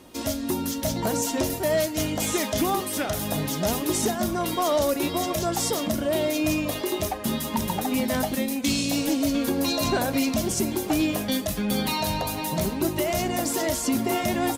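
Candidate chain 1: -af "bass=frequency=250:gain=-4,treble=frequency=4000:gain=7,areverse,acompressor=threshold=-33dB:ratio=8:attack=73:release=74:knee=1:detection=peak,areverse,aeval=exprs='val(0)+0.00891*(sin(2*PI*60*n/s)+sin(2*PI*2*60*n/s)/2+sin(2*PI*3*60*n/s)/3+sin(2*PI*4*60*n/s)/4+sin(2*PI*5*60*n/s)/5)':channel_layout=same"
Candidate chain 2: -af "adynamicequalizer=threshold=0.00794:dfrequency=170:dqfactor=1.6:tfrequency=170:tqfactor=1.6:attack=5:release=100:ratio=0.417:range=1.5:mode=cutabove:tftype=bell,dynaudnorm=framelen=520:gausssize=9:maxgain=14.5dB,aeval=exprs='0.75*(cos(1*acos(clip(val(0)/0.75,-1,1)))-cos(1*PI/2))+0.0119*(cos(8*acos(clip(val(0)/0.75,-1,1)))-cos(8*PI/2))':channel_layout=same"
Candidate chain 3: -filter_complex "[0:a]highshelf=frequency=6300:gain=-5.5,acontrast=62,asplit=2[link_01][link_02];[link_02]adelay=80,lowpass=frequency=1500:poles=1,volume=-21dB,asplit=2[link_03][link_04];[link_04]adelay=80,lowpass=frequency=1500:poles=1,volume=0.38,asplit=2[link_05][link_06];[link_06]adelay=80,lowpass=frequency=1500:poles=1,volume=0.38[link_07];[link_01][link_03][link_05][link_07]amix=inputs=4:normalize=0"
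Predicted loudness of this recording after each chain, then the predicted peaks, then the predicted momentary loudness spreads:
−29.0, −14.0, −19.5 LKFS; −16.0, −2.5, −9.5 dBFS; 1, 11, 4 LU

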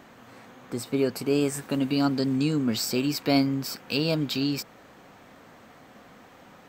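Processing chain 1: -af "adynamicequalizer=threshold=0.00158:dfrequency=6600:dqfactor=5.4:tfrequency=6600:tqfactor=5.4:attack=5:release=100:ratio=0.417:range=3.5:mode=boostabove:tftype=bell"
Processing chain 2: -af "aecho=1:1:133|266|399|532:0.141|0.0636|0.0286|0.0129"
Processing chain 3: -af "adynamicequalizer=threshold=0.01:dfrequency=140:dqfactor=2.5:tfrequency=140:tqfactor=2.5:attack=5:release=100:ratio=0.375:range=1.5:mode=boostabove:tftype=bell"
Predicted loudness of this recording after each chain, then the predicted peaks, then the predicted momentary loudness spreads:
−26.0, −26.5, −26.0 LKFS; −10.5, −10.5, −10.0 dBFS; 7, 7, 7 LU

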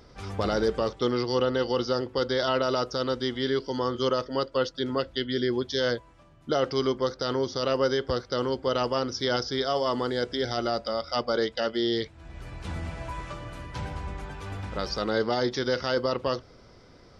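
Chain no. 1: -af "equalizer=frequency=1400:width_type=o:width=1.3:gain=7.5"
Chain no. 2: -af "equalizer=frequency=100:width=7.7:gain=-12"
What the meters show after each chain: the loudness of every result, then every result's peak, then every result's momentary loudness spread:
−26.0, −28.0 LKFS; −9.5, −13.5 dBFS; 11, 12 LU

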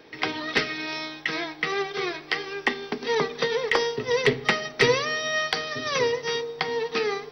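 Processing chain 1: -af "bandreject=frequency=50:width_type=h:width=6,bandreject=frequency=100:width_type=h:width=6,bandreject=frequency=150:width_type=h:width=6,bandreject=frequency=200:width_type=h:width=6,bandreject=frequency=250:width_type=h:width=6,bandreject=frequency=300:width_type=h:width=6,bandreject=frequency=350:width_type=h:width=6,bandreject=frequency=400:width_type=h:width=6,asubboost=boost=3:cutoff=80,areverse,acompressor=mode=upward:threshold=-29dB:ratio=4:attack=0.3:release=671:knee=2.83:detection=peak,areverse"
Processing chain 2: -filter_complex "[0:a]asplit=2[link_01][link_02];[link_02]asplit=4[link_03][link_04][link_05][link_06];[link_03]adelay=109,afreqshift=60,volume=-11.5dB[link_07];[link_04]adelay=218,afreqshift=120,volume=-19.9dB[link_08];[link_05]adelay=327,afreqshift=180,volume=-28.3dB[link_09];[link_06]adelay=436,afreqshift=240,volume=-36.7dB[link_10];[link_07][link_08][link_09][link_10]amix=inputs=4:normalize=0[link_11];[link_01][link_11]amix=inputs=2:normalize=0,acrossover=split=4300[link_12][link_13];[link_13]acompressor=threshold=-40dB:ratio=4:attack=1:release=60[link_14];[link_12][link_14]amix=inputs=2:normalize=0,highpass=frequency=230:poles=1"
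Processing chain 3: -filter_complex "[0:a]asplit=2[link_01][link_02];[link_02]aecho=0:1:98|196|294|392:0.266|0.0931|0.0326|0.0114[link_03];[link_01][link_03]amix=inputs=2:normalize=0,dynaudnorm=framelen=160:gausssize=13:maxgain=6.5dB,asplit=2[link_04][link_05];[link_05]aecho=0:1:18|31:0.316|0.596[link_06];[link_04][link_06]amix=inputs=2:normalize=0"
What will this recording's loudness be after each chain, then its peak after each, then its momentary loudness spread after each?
−26.0, −26.0, −21.0 LKFS; −4.5, −6.0, −1.0 dBFS; 7, 7, 7 LU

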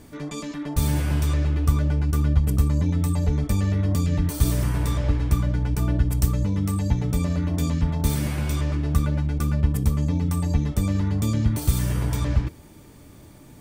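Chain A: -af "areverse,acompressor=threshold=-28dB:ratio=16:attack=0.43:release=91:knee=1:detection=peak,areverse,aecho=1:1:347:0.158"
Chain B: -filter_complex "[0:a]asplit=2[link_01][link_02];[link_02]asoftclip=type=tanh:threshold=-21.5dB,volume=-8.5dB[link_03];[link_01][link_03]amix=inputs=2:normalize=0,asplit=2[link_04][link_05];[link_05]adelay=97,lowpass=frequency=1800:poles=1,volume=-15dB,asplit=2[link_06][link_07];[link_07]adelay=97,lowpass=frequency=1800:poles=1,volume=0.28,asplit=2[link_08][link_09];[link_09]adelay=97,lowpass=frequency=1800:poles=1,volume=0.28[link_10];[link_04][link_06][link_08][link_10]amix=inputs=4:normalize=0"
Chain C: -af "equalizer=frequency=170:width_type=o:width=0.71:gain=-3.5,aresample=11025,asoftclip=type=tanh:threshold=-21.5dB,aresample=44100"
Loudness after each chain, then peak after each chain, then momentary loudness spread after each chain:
−35.0, −21.5, −28.5 LKFS; −24.0, −6.0, −21.5 dBFS; 2, 3, 2 LU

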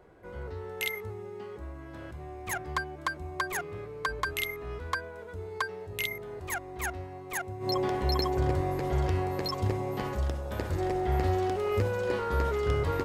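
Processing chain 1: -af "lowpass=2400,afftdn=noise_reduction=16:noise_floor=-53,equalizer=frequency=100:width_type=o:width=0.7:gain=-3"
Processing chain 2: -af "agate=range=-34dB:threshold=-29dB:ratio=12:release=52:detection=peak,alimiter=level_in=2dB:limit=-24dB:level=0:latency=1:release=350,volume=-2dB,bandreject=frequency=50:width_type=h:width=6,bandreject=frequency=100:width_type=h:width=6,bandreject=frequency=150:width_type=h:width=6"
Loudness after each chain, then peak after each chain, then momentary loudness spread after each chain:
−33.0, −42.0 LKFS; −15.0, −25.5 dBFS; 13, 20 LU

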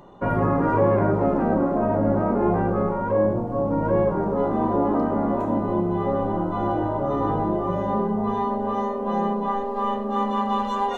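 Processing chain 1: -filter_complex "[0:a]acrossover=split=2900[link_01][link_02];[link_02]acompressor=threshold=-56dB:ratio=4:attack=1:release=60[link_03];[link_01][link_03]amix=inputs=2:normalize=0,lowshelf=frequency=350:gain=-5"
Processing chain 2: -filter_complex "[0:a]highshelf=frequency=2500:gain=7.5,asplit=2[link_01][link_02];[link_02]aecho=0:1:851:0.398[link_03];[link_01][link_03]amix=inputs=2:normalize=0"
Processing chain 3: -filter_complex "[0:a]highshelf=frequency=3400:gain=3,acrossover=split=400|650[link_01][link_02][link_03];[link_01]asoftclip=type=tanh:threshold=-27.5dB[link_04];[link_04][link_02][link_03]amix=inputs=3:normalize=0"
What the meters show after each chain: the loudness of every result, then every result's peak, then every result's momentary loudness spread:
−25.0, −22.0, −25.0 LKFS; −11.0, −8.0, −11.0 dBFS; 4, 4, 3 LU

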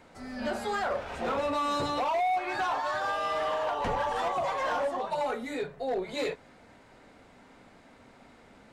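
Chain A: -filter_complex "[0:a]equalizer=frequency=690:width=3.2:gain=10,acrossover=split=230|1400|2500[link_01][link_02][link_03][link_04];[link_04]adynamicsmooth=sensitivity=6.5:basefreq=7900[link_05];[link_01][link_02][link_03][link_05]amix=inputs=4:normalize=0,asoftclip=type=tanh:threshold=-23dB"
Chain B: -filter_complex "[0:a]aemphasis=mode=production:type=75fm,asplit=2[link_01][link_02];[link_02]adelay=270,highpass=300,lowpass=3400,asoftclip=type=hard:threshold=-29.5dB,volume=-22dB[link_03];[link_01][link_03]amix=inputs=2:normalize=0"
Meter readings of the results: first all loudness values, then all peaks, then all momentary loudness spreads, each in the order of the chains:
−29.0, −30.0 LKFS; −23.0, −20.0 dBFS; 7, 6 LU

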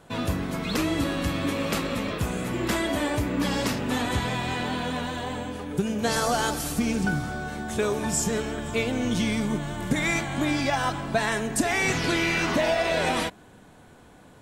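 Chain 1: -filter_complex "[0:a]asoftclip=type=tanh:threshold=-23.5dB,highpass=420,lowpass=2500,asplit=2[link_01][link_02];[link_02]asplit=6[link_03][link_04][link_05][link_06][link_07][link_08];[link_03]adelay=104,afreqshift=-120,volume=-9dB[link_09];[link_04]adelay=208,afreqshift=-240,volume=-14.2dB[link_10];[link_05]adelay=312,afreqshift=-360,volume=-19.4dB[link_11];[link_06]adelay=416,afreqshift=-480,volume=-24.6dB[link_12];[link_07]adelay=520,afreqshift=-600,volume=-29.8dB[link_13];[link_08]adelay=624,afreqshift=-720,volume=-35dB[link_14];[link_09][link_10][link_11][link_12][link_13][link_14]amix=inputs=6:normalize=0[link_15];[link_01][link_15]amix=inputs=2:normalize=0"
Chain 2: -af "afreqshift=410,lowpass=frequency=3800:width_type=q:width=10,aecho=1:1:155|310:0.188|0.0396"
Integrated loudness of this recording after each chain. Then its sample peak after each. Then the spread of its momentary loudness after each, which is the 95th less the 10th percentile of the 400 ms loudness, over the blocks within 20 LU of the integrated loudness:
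−32.5, −20.0 LKFS; −19.0, −4.5 dBFS; 7, 9 LU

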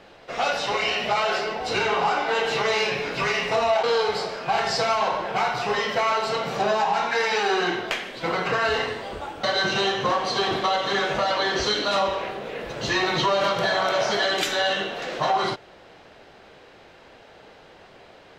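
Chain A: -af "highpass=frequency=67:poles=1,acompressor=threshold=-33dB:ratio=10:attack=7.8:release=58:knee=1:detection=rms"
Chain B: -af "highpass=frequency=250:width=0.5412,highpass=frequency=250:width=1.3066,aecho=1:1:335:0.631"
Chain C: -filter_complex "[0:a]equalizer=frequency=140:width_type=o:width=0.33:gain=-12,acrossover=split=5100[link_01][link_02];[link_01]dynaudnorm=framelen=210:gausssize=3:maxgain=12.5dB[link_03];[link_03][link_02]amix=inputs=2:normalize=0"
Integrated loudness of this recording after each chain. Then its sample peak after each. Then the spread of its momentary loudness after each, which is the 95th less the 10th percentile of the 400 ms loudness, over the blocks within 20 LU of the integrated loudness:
−35.0, −22.0, −14.0 LKFS; −21.0, −8.0, −1.5 dBFS; 15, 5, 7 LU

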